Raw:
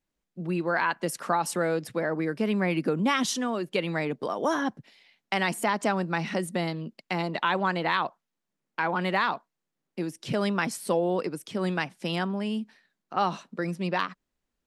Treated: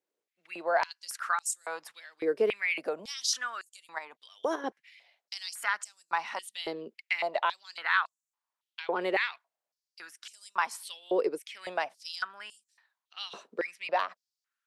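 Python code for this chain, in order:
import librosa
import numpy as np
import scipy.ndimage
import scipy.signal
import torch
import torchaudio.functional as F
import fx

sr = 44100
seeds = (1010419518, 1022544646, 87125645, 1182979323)

y = fx.level_steps(x, sr, step_db=9, at=(3.87, 4.64))
y = fx.filter_held_highpass(y, sr, hz=3.6, low_hz=430.0, high_hz=7300.0)
y = y * librosa.db_to_amplitude(-5.5)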